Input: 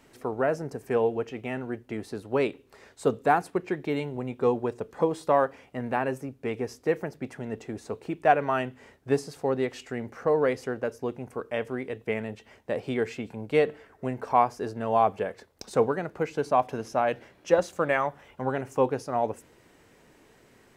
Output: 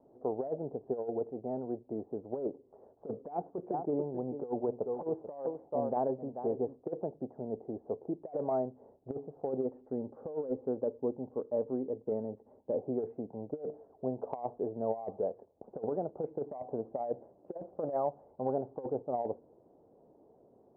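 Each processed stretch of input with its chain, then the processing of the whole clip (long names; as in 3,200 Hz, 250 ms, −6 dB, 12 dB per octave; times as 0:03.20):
0:03.14–0:06.88: low-pass filter 2,300 Hz 6 dB per octave + parametric band 1,800 Hz +5.5 dB 1.4 octaves + single-tap delay 437 ms −11.5 dB
0:09.63–0:12.81: parametric band 260 Hz +5 dB 0.25 octaves + notch filter 700 Hz, Q 6.6
whole clip: Butterworth low-pass 740 Hz 36 dB per octave; spectral tilt +4 dB per octave; compressor whose output falls as the input rises −32 dBFS, ratio −0.5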